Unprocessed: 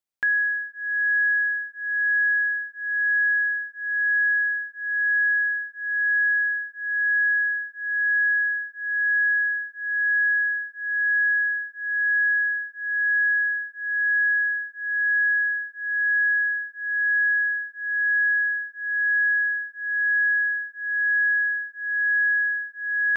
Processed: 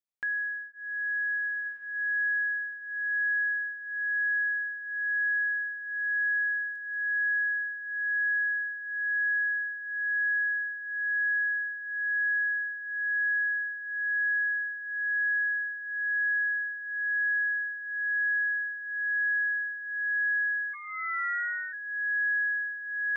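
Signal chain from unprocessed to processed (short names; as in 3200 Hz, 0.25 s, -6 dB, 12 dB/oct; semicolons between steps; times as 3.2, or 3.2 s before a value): 5.96–7.54 crackle 14/s -45 dBFS; diffused feedback echo 1.437 s, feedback 43%, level -8 dB; 20.73–21.72 ring modulator 500 Hz -> 170 Hz; gain -9 dB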